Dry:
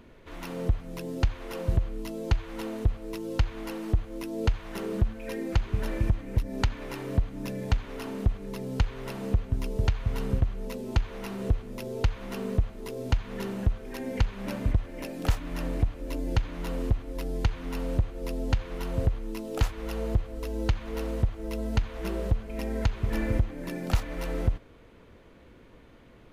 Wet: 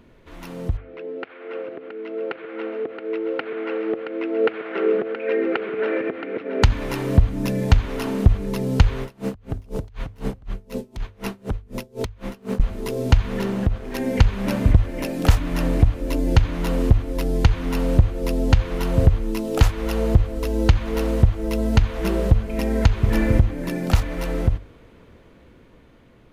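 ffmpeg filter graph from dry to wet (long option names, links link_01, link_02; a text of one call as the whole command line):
ffmpeg -i in.wav -filter_complex "[0:a]asettb=1/sr,asplit=3[link_01][link_02][link_03];[link_01]atrim=end=0.774[link_04];[link_02]atrim=start=0.77:end=6.63,asetpts=PTS-STARTPTS,afade=type=in:duration=0.004:curve=qsin,afade=type=out:start_time=5.856:duration=0.004:curve=qsin,acompressor=threshold=-23dB:ratio=3:attack=3.2:release=140:knee=1:detection=peak,highpass=frequency=300:width=0.5412,highpass=frequency=300:width=1.3066,equalizer=frequency=440:width_type=q:width=4:gain=8,equalizer=frequency=970:width_type=q:width=4:gain=-7,equalizer=frequency=1400:width_type=q:width=4:gain=6,equalizer=frequency=2200:width_type=q:width=4:gain=4,lowpass=frequency=2800:width=0.5412,lowpass=frequency=2800:width=1.3066,aecho=1:1:673:0.316,atrim=end_sample=258426[link_05];[link_03]atrim=start=6.626[link_06];[link_04][link_05]acrossfade=duration=0.004:curve1=hsin:curve2=qsin[link_07];[link_07][link_06]acrossfade=duration=0.004:curve1=qsin:curve2=hsin,asettb=1/sr,asplit=3[link_08][link_09][link_10];[link_08]atrim=end=9.024[link_11];[link_09]atrim=start=9.02:end=12.6,asetpts=PTS-STARTPTS,afade=type=in:duration=0.004:curve=qsin,afade=type=out:start_time=3.576:duration=0.004:curve=qsin,acompressor=threshold=-26dB:ratio=12:attack=3.2:release=140:knee=1:detection=peak,aeval=exprs='0.0473*(abs(mod(val(0)/0.0473+3,4)-2)-1)':channel_layout=same,aeval=exprs='val(0)*pow(10,-30*(0.5-0.5*cos(2*PI*4*n/s))/20)':channel_layout=same[link_12];[link_10]atrim=start=12.596[link_13];[link_11][link_12]acrossfade=duration=0.004:curve1=hsin:curve2=qsin[link_14];[link_14][link_13]acrossfade=duration=0.004:curve1=qsin:curve2=hsin,asettb=1/sr,asplit=3[link_15][link_16][link_17];[link_15]atrim=end=13.394[link_18];[link_16]atrim=start=13.39:end=13.95,asetpts=PTS-STARTPTS,afade=type=in:duration=0.004:curve=qsin,afade=type=out:start_time=0.556:duration=0.004:curve=qsin,highshelf=frequency=5900:gain=-6.5,acompressor=threshold=-27dB:ratio=2:attack=3.2:release=140:knee=1:detection=peak,aeval=exprs='sgn(val(0))*max(abs(val(0))-0.00398,0)':channel_layout=same[link_19];[link_17]atrim=start=13.946[link_20];[link_18][link_19]acrossfade=duration=0.004:curve1=hsin:curve2=qsin[link_21];[link_21][link_20]acrossfade=duration=0.004:curve1=qsin:curve2=hsin,equalizer=frequency=110:width_type=o:width=2.4:gain=3,bandreject=frequency=50:width_type=h:width=6,bandreject=frequency=100:width_type=h:width=6,dynaudnorm=framelen=920:gausssize=7:maxgain=11.5dB" out.wav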